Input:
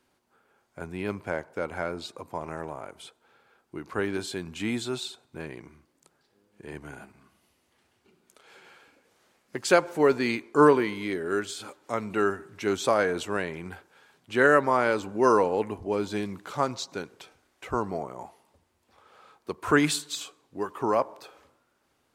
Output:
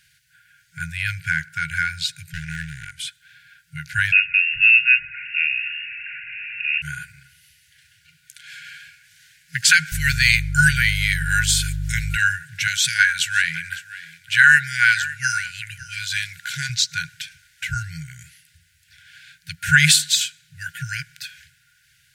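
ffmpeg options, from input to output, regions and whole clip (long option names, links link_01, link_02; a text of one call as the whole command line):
ffmpeg -i in.wav -filter_complex "[0:a]asettb=1/sr,asplit=3[link_01][link_02][link_03];[link_01]atrim=end=2.304[link_04];[link_02]atrim=start=2.3:end=2.99,asetpts=PTS-STARTPTS,afade=type=in:duration=0.004:curve=qsin,afade=type=out:start_time=0.686:duration=0.004:curve=qsin,lowpass=10000,aeval=exprs='clip(val(0),-1,0.0133)':channel_layout=same[link_05];[link_03]atrim=start=2.986[link_06];[link_04][link_05]acrossfade=duration=0.004:curve1=hsin:curve2=qsin[link_07];[link_07][link_06]acrossfade=duration=0.004:curve1=qsin:curve2=hsin,asettb=1/sr,asplit=3[link_08][link_09][link_10];[link_08]atrim=end=4.124[link_11];[link_09]atrim=start=4.12:end=6.82,asetpts=PTS-STARTPTS,afade=type=in:duration=0.004:curve=qsin,afade=type=out:start_time=2.696:duration=0.004:curve=qsin,aeval=exprs='val(0)+0.5*0.0075*sgn(val(0))':channel_layout=same,lowpass=frequency=2500:width_type=q:width=0.5098,lowpass=frequency=2500:width_type=q:width=0.6013,lowpass=frequency=2500:width_type=q:width=0.9,lowpass=frequency=2500:width_type=q:width=2.563,afreqshift=-2900[link_12];[link_10]atrim=start=6.816[link_13];[link_11][link_12]acrossfade=duration=0.004:curve1=hsin:curve2=qsin[link_14];[link_14][link_13]acrossfade=duration=0.004:curve1=qsin:curve2=hsin,asettb=1/sr,asplit=3[link_15][link_16][link_17];[link_15]atrim=end=9.924[link_18];[link_16]atrim=start=9.92:end=12.17,asetpts=PTS-STARTPTS,afade=type=in:duration=0.004:curve=qsin,afade=type=out:start_time=2.246:duration=0.004:curve=qsin,highshelf=frequency=7600:gain=9,aeval=exprs='val(0)+0.02*(sin(2*PI*50*n/s)+sin(2*PI*2*50*n/s)/2+sin(2*PI*3*50*n/s)/3+sin(2*PI*4*50*n/s)/4+sin(2*PI*5*50*n/s)/5)':channel_layout=same[link_19];[link_17]atrim=start=12.166[link_20];[link_18][link_19]acrossfade=duration=0.004:curve1=hsin:curve2=qsin[link_21];[link_21][link_20]acrossfade=duration=0.004:curve1=qsin:curve2=hsin,asettb=1/sr,asplit=3[link_22][link_23][link_24];[link_22]atrim=end=12.674[link_25];[link_23]atrim=start=12.67:end=16.7,asetpts=PTS-STARTPTS,afade=type=in:duration=0.004:curve=qsin,afade=type=out:start_time=4.026:duration=0.004:curve=qsin,highpass=frequency=290:poles=1,aecho=1:1:557:0.126,atrim=end_sample=177723[link_26];[link_24]atrim=start=16.696[link_27];[link_25][link_26]acrossfade=duration=0.004:curve1=hsin:curve2=qsin[link_28];[link_28][link_27]acrossfade=duration=0.004:curve1=qsin:curve2=hsin,afftfilt=real='re*(1-between(b*sr/4096,170,1400))':imag='im*(1-between(b*sr/4096,170,1400))':win_size=4096:overlap=0.75,lowshelf=frequency=97:gain=-8,alimiter=level_in=17dB:limit=-1dB:release=50:level=0:latency=1,volume=-1dB" out.wav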